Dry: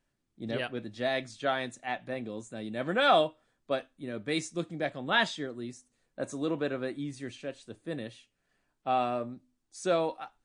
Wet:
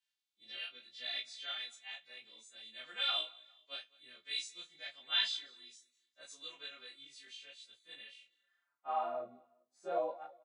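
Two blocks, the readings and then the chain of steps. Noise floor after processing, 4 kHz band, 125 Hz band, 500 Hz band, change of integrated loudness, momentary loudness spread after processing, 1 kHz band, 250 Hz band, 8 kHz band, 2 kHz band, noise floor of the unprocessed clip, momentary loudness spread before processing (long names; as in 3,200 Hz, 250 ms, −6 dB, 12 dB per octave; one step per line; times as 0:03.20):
below −85 dBFS, +0.5 dB, below −30 dB, −14.0 dB, −7.0 dB, 20 LU, −11.5 dB, below −25 dB, −8.0 dB, −11.5 dB, −79 dBFS, 15 LU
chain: every partial snapped to a pitch grid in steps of 2 semitones
band-pass filter sweep 3,500 Hz → 670 Hz, 0:07.87–0:09.27
on a send: repeating echo 202 ms, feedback 38%, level −23.5 dB
on the sum: micro pitch shift up and down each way 27 cents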